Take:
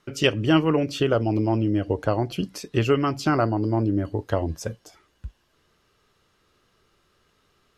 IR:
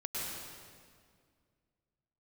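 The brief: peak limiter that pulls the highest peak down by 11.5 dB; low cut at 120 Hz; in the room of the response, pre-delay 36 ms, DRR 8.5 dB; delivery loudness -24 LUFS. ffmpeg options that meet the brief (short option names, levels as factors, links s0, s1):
-filter_complex "[0:a]highpass=120,alimiter=limit=0.178:level=0:latency=1,asplit=2[s0][s1];[1:a]atrim=start_sample=2205,adelay=36[s2];[s1][s2]afir=irnorm=-1:irlink=0,volume=0.251[s3];[s0][s3]amix=inputs=2:normalize=0,volume=1.26"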